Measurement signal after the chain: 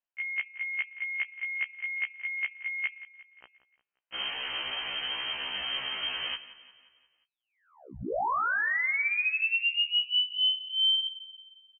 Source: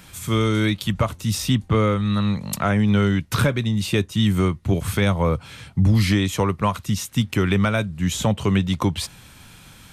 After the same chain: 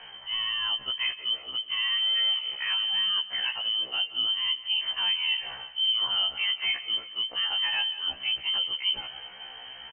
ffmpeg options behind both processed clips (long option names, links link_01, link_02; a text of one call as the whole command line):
ffmpeg -i in.wav -af "bandreject=frequency=204.6:width_type=h:width=4,bandreject=frequency=409.2:width_type=h:width=4,bandreject=frequency=613.8:width_type=h:width=4,bandreject=frequency=818.4:width_type=h:width=4,bandreject=frequency=1023:width_type=h:width=4,bandreject=frequency=1227.6:width_type=h:width=4,bandreject=frequency=1432.2:width_type=h:width=4,areverse,acompressor=threshold=-30dB:ratio=6,areverse,aecho=1:1:177|354|531|708|885:0.15|0.0778|0.0405|0.021|0.0109,lowpass=frequency=2700:width_type=q:width=0.5098,lowpass=frequency=2700:width_type=q:width=0.6013,lowpass=frequency=2700:width_type=q:width=0.9,lowpass=frequency=2700:width_type=q:width=2.563,afreqshift=-3200,afftfilt=real='re*1.73*eq(mod(b,3),0)':imag='im*1.73*eq(mod(b,3),0)':win_size=2048:overlap=0.75,volume=5dB" out.wav